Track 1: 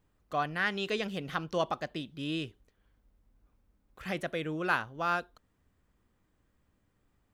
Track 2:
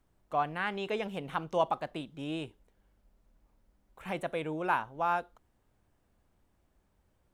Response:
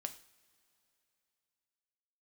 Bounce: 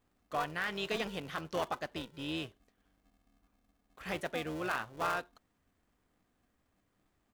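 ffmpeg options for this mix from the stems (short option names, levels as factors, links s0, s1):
-filter_complex "[0:a]alimiter=limit=0.0794:level=0:latency=1,volume=0.794[s0];[1:a]aphaser=in_gain=1:out_gain=1:delay=2.7:decay=0.39:speed=0.99:type=sinusoidal,aeval=exprs='val(0)*sgn(sin(2*PI*240*n/s))':c=same,volume=-1,adelay=6.7,volume=0.266[s1];[s0][s1]amix=inputs=2:normalize=0,lowshelf=f=250:g=-5.5"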